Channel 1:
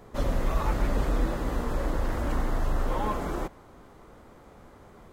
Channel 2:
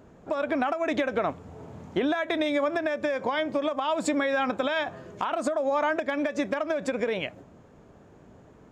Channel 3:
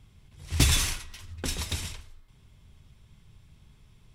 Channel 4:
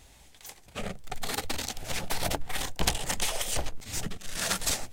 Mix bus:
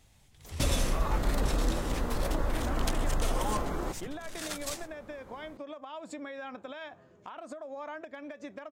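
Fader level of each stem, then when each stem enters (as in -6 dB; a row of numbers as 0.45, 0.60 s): -2.5, -15.5, -9.5, -9.5 dB; 0.45, 2.05, 0.00, 0.00 s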